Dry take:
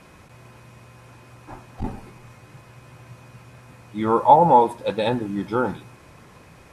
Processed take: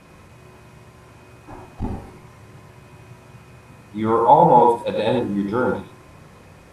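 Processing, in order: bass shelf 480 Hz +3.5 dB; gated-style reverb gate 120 ms rising, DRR 2.5 dB; trim -1.5 dB

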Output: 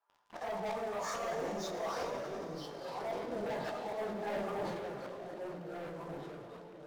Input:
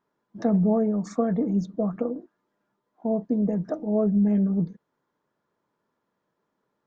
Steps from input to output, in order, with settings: phase randomisation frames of 100 ms; Chebyshev high-pass 850 Hz, order 3; tilt EQ -4 dB/octave; slow attack 782 ms; waveshaping leveller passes 5; compression 2:1, threshold -54 dBFS, peak gain reduction 8.5 dB; flange 0.5 Hz, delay 9.4 ms, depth 9.7 ms, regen -52%; ever faster or slower copies 671 ms, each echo -3 st, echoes 3, each echo -6 dB; reverberation RT60 4.4 s, pre-delay 43 ms, DRR 6.5 dB; decay stretcher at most 31 dB/s; trim +14 dB

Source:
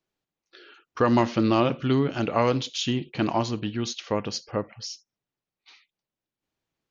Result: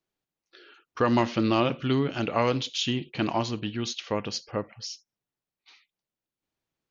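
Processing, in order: dynamic bell 2.9 kHz, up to +4 dB, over -44 dBFS, Q 0.98; trim -2.5 dB

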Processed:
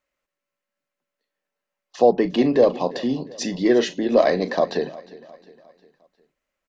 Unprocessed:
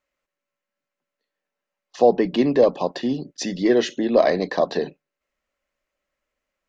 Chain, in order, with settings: 2.15–4.54 s: doubling 38 ms -13.5 dB; feedback delay 356 ms, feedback 47%, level -19.5 dB

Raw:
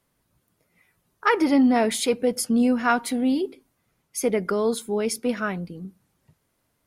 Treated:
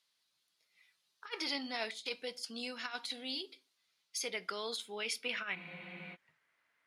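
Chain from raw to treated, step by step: band-pass sweep 4.1 kHz -> 1.9 kHz, 4.18–6.38 s; compressor with a negative ratio -41 dBFS, ratio -0.5; on a send at -14 dB: reverberation RT60 0.35 s, pre-delay 5 ms; on the sum: spectral freeze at 5.58 s, 0.56 s; trim +3 dB

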